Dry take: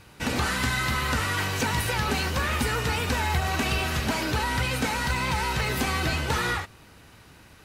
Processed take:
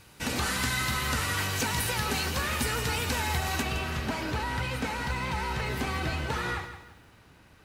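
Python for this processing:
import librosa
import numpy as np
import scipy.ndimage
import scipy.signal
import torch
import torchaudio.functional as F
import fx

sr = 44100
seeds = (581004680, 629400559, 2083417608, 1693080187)

y = fx.high_shelf(x, sr, hz=4200.0, db=fx.steps((0.0, 7.0), (3.61, -7.0)))
y = fx.echo_crushed(y, sr, ms=167, feedback_pct=35, bits=9, wet_db=-11)
y = F.gain(torch.from_numpy(y), -4.5).numpy()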